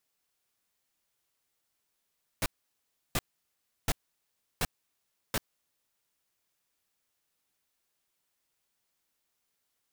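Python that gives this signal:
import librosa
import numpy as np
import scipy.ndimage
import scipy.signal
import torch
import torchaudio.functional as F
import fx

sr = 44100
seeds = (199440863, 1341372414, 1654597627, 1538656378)

y = fx.noise_burst(sr, seeds[0], colour='pink', on_s=0.04, off_s=0.69, bursts=5, level_db=-28.0)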